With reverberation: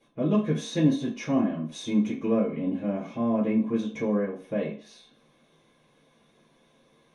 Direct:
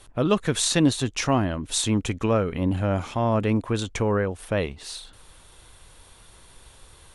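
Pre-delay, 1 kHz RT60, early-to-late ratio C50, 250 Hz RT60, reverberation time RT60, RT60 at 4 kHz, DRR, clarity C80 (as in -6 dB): 3 ms, 0.45 s, 8.0 dB, 0.40 s, 0.45 s, 0.45 s, -9.5 dB, 12.5 dB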